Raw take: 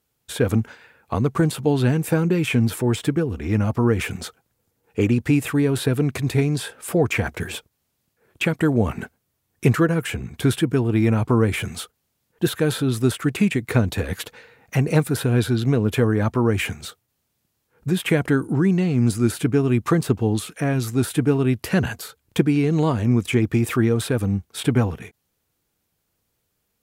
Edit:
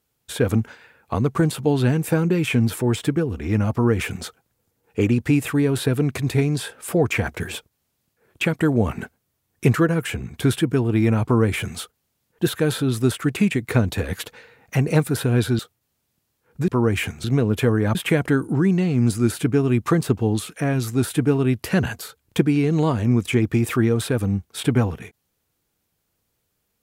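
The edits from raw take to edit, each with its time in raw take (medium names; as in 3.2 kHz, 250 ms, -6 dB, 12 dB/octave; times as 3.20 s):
15.59–16.30 s: swap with 16.86–17.95 s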